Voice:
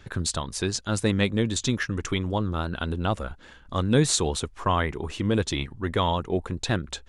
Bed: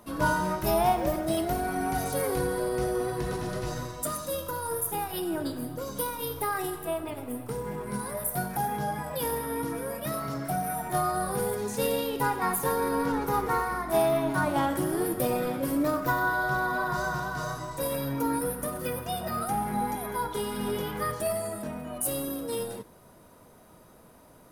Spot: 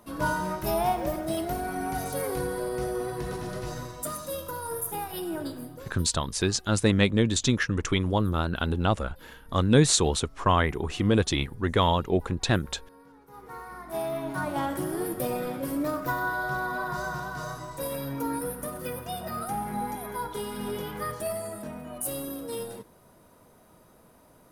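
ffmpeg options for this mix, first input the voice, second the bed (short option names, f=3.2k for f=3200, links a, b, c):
-filter_complex "[0:a]adelay=5800,volume=1.5dB[a];[1:a]volume=21.5dB,afade=t=out:st=5.44:d=0.65:silence=0.0630957,afade=t=in:st=13.27:d=1.43:silence=0.0668344[b];[a][b]amix=inputs=2:normalize=0"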